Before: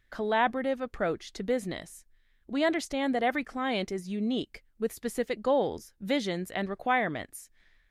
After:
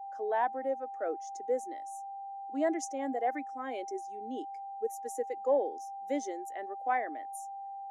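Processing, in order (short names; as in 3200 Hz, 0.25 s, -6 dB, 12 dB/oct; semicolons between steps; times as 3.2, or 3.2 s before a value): whine 790 Hz -34 dBFS; steep high-pass 270 Hz 48 dB/oct; resonant high shelf 5000 Hz +7.5 dB, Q 3; in parallel at -3 dB: soft clip -20.5 dBFS, distortion -17 dB; on the sum: spectral expander 1.5:1; gain -7.5 dB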